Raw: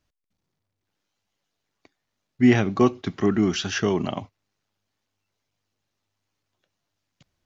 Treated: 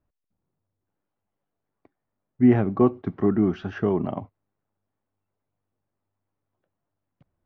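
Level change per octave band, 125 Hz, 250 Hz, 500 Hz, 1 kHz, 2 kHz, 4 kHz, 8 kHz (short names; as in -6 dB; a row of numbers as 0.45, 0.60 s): 0.0 dB, 0.0 dB, 0.0 dB, -2.0 dB, -9.5 dB, under -15 dB, n/a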